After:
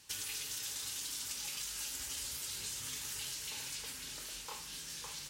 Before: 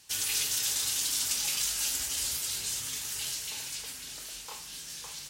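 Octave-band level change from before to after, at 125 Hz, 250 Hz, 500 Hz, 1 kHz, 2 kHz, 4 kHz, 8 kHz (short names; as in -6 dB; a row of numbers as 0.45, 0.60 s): -4.5, -4.5, -5.0, -5.0, -7.0, -8.5, -9.5 dB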